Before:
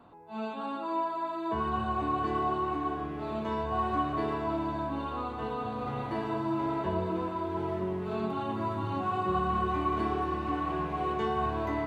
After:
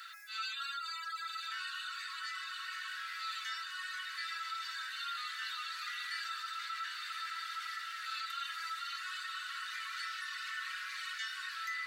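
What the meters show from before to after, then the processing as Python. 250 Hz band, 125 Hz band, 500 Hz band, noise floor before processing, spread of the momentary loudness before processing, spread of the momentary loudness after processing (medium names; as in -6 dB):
under -40 dB, under -40 dB, under -40 dB, -37 dBFS, 6 LU, 2 LU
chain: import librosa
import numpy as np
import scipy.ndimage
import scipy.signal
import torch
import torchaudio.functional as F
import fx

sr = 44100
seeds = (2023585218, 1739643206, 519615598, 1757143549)

y = fx.rider(x, sr, range_db=4, speed_s=0.5)
y = scipy.signal.sosfilt(scipy.signal.cheby1(6, 9, 1300.0, 'highpass', fs=sr, output='sos'), y)
y = fx.dereverb_blind(y, sr, rt60_s=1.5)
y = fx.high_shelf(y, sr, hz=4000.0, db=11.5)
y = fx.echo_diffused(y, sr, ms=1171, feedback_pct=64, wet_db=-7)
y = fx.env_flatten(y, sr, amount_pct=50)
y = y * 10.0 ** (7.0 / 20.0)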